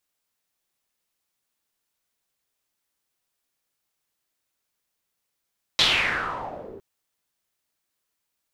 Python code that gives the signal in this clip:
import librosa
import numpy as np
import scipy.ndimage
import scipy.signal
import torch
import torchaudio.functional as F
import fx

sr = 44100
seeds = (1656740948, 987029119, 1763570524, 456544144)

y = fx.riser_noise(sr, seeds[0], length_s=1.01, colour='white', kind='lowpass', start_hz=4000.0, end_hz=360.0, q=4.5, swell_db=-14.5, law='exponential')